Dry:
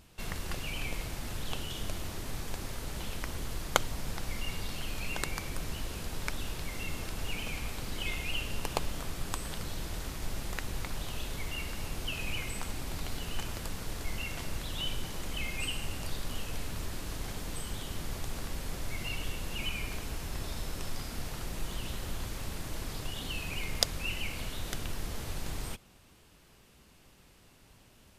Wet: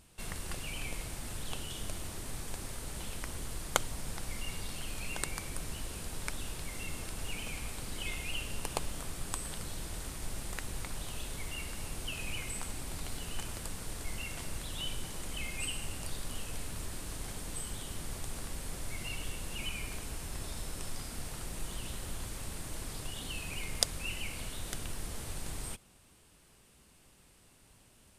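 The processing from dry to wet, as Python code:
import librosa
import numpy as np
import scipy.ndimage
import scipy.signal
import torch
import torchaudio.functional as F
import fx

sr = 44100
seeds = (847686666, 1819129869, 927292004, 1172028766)

y = fx.peak_eq(x, sr, hz=9000.0, db=9.5, octaves=0.52)
y = y * 10.0 ** (-3.5 / 20.0)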